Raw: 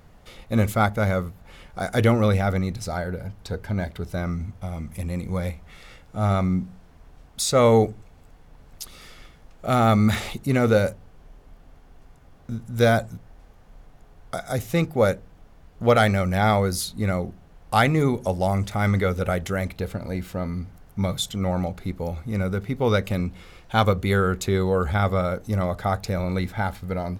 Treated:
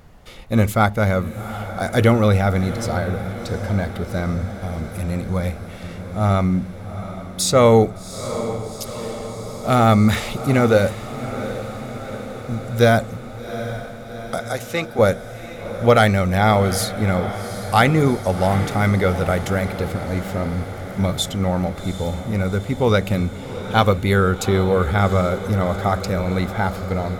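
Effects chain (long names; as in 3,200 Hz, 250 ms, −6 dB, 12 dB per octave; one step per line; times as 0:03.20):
0:14.41–0:14.99: meter weighting curve A
feedback delay with all-pass diffusion 765 ms, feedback 69%, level −12 dB
level +4 dB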